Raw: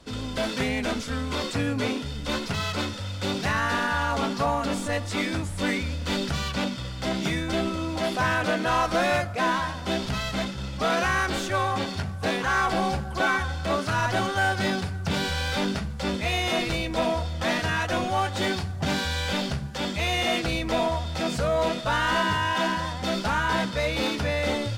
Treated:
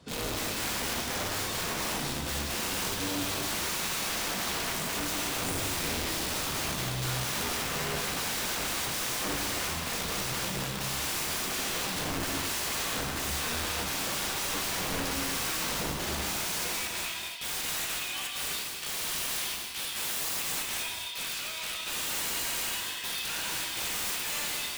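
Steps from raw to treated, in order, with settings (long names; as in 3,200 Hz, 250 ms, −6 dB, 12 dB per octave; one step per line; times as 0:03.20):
high-pass filter sweep 100 Hz → 2,600 Hz, 0:16.17–0:17.06
wrap-around overflow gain 25.5 dB
reverb whose tail is shaped and stops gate 320 ms flat, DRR −0.5 dB
level −5 dB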